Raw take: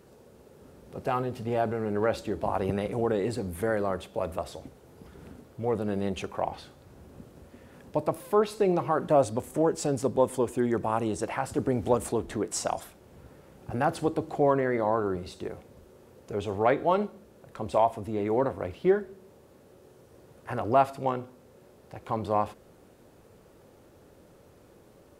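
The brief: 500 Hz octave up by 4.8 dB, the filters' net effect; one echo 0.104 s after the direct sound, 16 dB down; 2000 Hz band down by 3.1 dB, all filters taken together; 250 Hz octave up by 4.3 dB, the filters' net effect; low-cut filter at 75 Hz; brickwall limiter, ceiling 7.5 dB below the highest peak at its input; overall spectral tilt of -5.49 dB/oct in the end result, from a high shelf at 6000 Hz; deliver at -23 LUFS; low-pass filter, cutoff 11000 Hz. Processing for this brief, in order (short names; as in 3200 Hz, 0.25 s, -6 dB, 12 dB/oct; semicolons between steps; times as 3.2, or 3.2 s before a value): HPF 75 Hz; LPF 11000 Hz; bell 250 Hz +4 dB; bell 500 Hz +5 dB; bell 2000 Hz -5 dB; high shelf 6000 Hz +3.5 dB; limiter -14 dBFS; echo 0.104 s -16 dB; gain +3.5 dB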